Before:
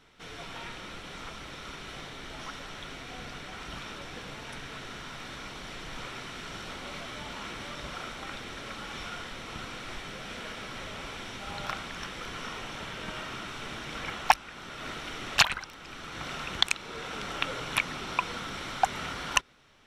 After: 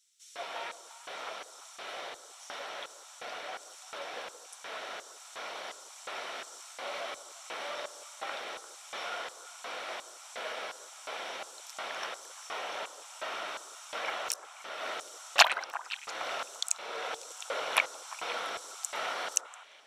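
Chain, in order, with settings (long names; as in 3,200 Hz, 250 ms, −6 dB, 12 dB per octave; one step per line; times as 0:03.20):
auto-filter high-pass square 1.4 Hz 610–7,300 Hz
echo through a band-pass that steps 173 ms, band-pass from 410 Hz, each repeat 1.4 octaves, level −9 dB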